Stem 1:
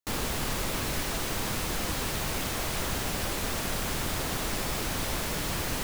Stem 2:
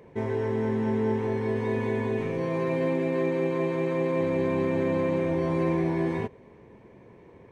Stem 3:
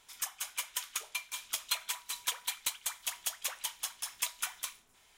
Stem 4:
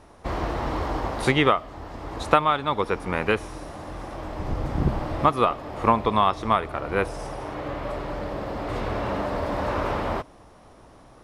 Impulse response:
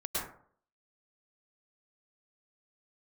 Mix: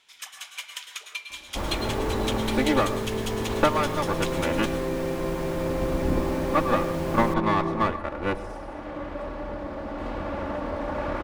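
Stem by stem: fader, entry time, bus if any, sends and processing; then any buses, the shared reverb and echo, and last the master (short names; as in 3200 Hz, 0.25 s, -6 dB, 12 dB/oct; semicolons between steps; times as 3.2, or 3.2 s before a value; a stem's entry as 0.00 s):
-2.5 dB, 1.50 s, no send, dry
-2.5 dB, 1.65 s, no send, dry
-3.0 dB, 0.00 s, send -7.5 dB, weighting filter D
-2.0 dB, 1.30 s, send -17.5 dB, minimum comb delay 3.5 ms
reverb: on, RT60 0.55 s, pre-delay 97 ms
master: high shelf 2600 Hz -11 dB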